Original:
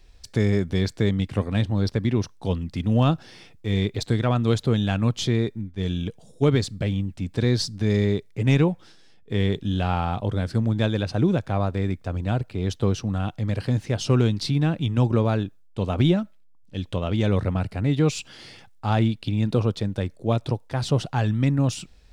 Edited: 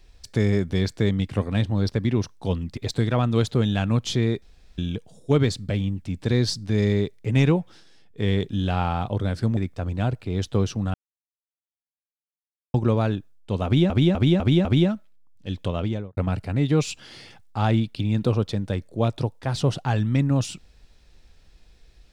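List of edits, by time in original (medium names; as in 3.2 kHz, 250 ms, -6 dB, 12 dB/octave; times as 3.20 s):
2.77–3.89 s: delete
5.54–5.90 s: room tone
10.69–11.85 s: delete
13.22–15.02 s: mute
15.93–16.18 s: loop, 5 plays
17.02–17.45 s: studio fade out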